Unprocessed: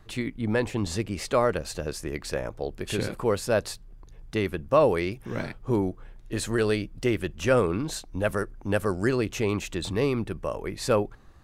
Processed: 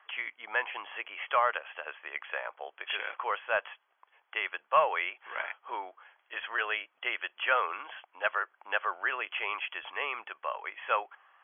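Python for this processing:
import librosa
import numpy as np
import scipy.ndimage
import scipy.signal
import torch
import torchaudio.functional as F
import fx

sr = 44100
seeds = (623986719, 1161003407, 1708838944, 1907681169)

p1 = scipy.signal.sosfilt(scipy.signal.butter(4, 820.0, 'highpass', fs=sr, output='sos'), x)
p2 = 10.0 ** (-24.0 / 20.0) * np.tanh(p1 / 10.0 ** (-24.0 / 20.0))
p3 = p1 + (p2 * 10.0 ** (-5.5 / 20.0))
y = fx.brickwall_lowpass(p3, sr, high_hz=3400.0)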